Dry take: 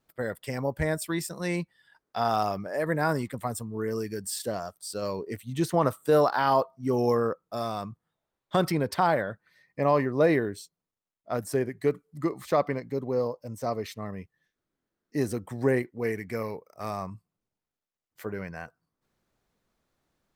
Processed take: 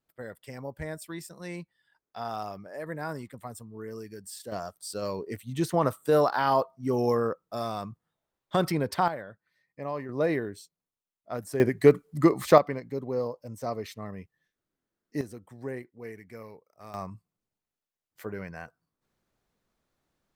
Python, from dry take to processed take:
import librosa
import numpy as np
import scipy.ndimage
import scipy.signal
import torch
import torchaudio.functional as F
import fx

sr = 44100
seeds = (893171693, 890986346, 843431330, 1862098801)

y = fx.gain(x, sr, db=fx.steps((0.0, -9.0), (4.52, -1.0), (9.08, -11.0), (10.09, -4.5), (11.6, 8.0), (12.58, -2.5), (15.21, -12.0), (16.94, -2.0)))